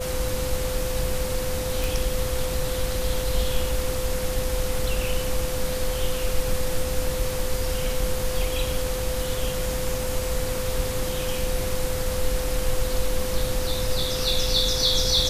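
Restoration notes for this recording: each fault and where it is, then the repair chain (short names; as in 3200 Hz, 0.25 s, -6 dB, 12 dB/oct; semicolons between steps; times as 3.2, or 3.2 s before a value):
tone 510 Hz -29 dBFS
1.84 pop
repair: de-click; notch 510 Hz, Q 30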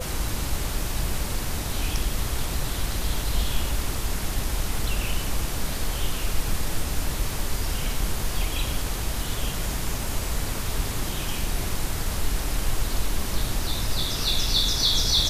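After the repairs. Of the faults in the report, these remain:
none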